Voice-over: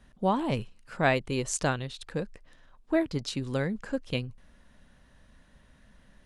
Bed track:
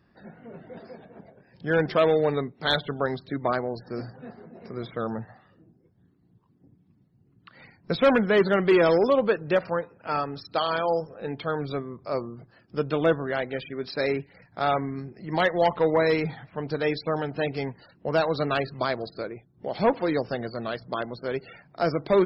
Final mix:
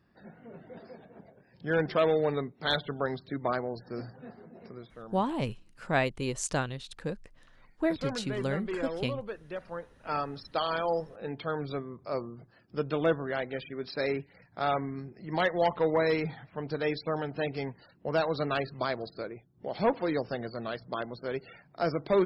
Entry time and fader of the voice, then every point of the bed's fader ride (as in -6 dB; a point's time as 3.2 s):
4.90 s, -2.5 dB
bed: 4.64 s -4.5 dB
4.89 s -16 dB
9.55 s -16 dB
10.12 s -4.5 dB